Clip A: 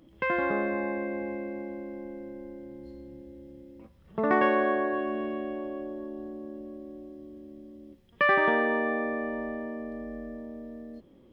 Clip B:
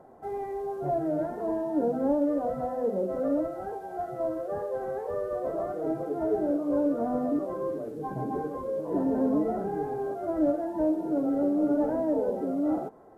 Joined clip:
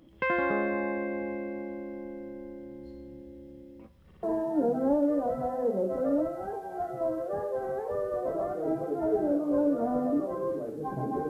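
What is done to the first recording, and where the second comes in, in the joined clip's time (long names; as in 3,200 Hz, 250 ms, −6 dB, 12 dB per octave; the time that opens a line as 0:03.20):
clip A
0:04.05: stutter in place 0.06 s, 3 plays
0:04.23: continue with clip B from 0:01.42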